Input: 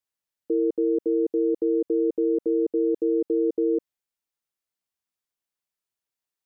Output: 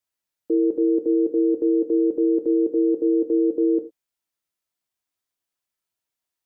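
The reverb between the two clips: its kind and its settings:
reverb whose tail is shaped and stops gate 130 ms falling, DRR 5.5 dB
level +2 dB

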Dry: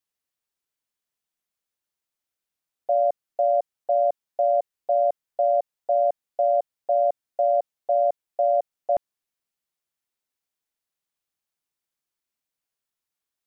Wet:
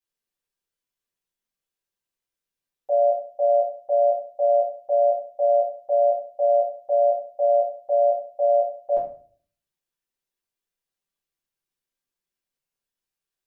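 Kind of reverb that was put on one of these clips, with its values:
rectangular room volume 39 cubic metres, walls mixed, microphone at 1.2 metres
level −8.5 dB

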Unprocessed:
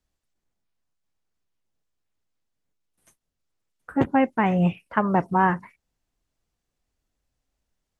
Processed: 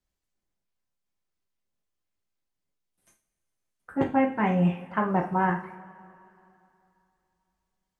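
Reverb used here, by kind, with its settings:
coupled-rooms reverb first 0.36 s, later 2.8 s, from −21 dB, DRR 1 dB
level −6 dB

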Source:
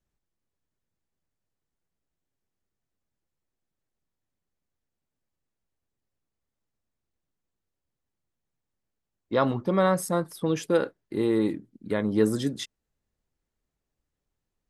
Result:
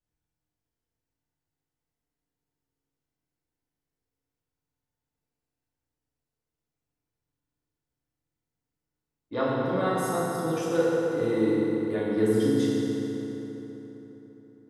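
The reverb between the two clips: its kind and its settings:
feedback delay network reverb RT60 4 s, high-frequency decay 0.6×, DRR −8 dB
level −9 dB

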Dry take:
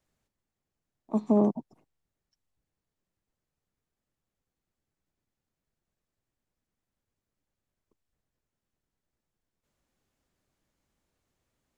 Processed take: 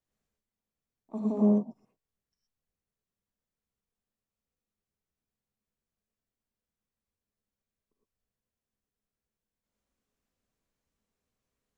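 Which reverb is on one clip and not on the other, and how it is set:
reverb whose tail is shaped and stops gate 140 ms rising, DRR −3 dB
level −10.5 dB

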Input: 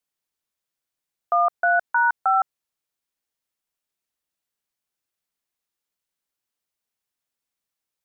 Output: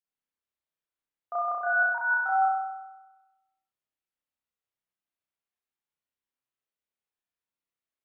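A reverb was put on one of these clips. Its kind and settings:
spring reverb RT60 1.1 s, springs 31 ms, chirp 35 ms, DRR −9 dB
level −15.5 dB

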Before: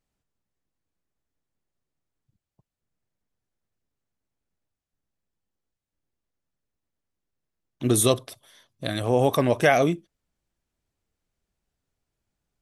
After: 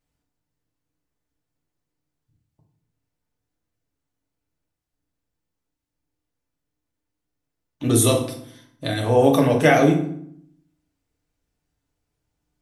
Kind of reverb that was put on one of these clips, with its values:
feedback delay network reverb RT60 0.65 s, low-frequency decay 1.45×, high-frequency decay 0.7×, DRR −0.5 dB

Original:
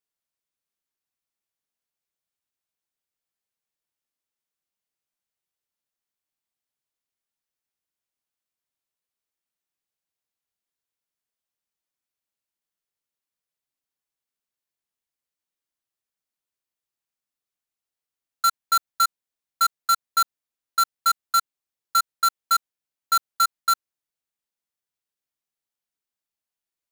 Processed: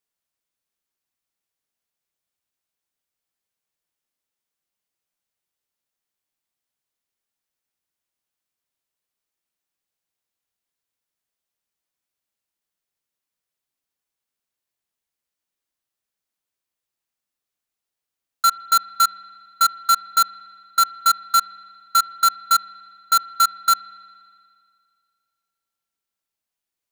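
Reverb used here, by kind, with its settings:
spring reverb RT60 2.2 s, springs 56 ms, chirp 25 ms, DRR 17 dB
level +3.5 dB

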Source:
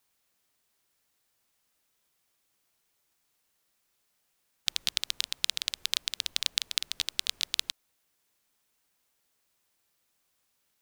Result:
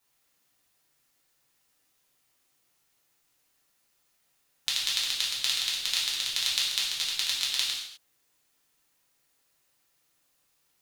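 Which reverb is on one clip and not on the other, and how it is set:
reverb whose tail is shaped and stops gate 280 ms falling, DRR −6 dB
level −3 dB

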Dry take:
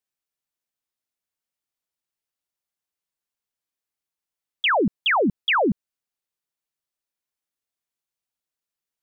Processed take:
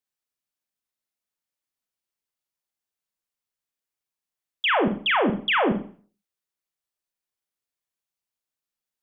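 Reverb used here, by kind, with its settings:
four-comb reverb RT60 0.44 s, combs from 30 ms, DRR 4 dB
level −2.5 dB

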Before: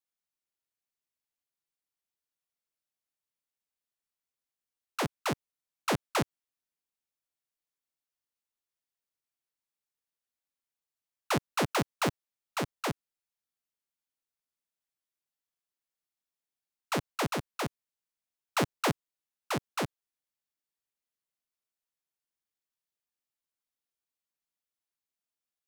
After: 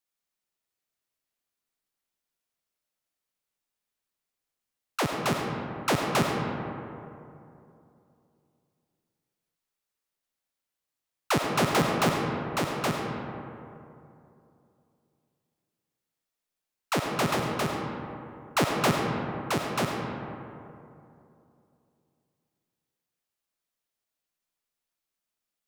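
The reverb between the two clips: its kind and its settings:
comb and all-pass reverb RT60 2.8 s, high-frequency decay 0.4×, pre-delay 40 ms, DRR 1 dB
level +3.5 dB

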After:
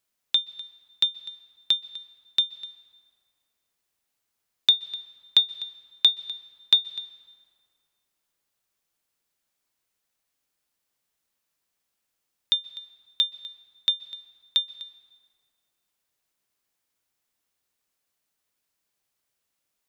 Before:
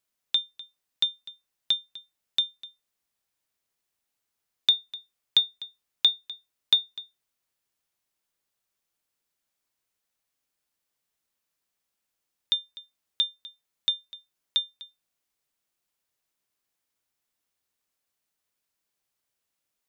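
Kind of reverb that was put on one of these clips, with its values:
dense smooth reverb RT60 2.4 s, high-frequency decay 0.6×, pre-delay 115 ms, DRR 18.5 dB
level +2.5 dB

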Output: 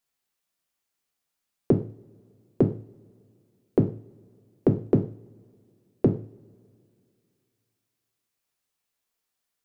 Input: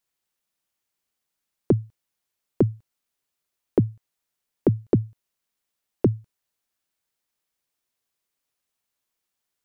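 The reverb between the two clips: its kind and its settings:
coupled-rooms reverb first 0.4 s, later 2.5 s, from −26 dB, DRR 3.5 dB
level −1.5 dB

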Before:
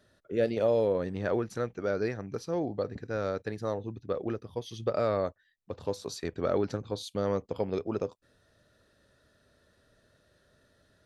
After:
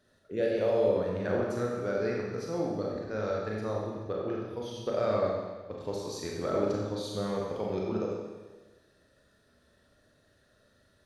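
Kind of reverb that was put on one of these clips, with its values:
four-comb reverb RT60 1.3 s, combs from 29 ms, DRR −2.5 dB
level −4 dB

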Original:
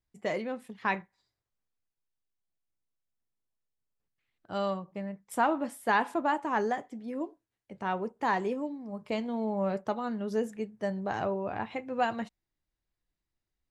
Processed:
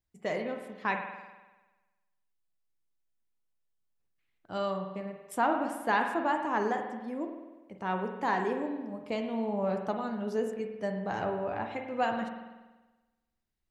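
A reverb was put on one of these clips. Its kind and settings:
spring reverb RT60 1.2 s, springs 48 ms, chirp 75 ms, DRR 4.5 dB
level −1.5 dB

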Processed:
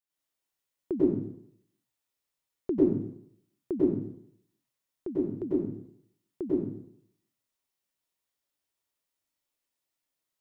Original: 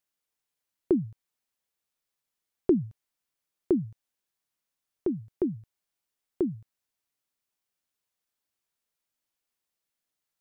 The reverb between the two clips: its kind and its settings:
dense smooth reverb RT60 0.68 s, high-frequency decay 0.85×, pre-delay 85 ms, DRR −8 dB
level −8.5 dB

